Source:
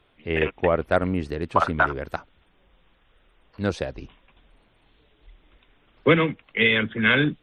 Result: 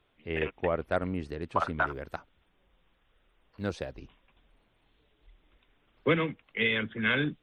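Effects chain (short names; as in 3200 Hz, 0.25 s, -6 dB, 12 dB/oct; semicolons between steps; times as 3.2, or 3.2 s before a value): 1.88–3.99 short-mantissa float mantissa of 6-bit; gain -8 dB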